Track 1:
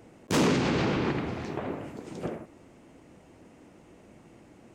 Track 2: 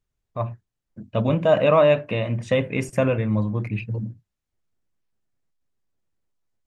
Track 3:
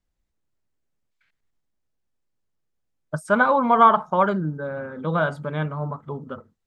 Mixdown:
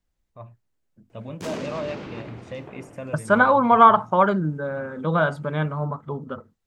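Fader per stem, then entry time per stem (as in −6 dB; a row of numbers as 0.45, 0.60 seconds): −9.0, −15.0, +1.5 decibels; 1.10, 0.00, 0.00 seconds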